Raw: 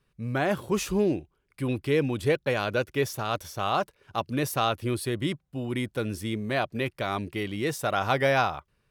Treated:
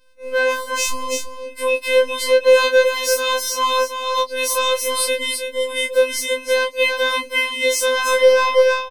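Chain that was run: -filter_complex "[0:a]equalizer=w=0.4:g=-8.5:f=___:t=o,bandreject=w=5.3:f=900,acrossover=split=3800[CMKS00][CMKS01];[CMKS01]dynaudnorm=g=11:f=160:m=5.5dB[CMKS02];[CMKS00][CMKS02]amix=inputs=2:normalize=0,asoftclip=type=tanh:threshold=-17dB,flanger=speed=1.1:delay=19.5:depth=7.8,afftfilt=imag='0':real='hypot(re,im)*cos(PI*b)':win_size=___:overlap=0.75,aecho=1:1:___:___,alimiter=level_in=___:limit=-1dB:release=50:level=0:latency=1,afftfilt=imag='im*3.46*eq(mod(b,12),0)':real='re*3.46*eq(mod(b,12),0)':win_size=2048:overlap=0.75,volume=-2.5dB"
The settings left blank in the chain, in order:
14000, 1024, 328, 0.376, 21.5dB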